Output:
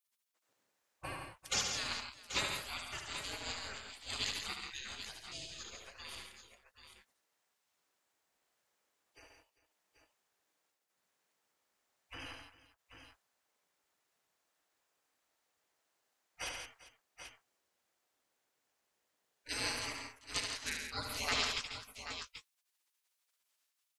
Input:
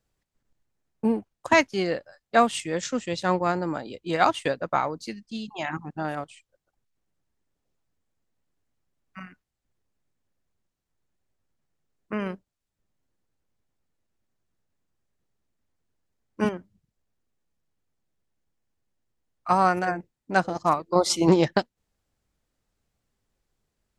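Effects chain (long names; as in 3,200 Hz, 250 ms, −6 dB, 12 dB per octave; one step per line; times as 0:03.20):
gate on every frequency bin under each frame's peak −30 dB weak
multi-tap delay 74/139/167/395/784/803 ms −5.5/−8.5/−9/−17.5/−10/−17.5 dB
level +5 dB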